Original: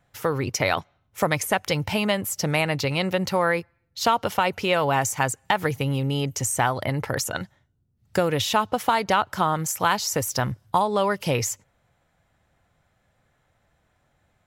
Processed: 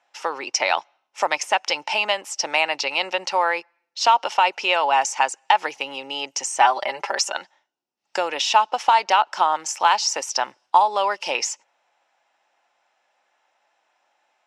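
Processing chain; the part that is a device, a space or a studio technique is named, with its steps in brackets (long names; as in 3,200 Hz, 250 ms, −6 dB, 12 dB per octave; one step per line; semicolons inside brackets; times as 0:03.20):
phone speaker on a table (loudspeaker in its box 390–7,800 Hz, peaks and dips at 450 Hz −8 dB, 870 Hz +9 dB, 2,700 Hz +8 dB, 5,400 Hz +8 dB)
0:06.60–0:07.33: comb filter 5.1 ms, depth 92%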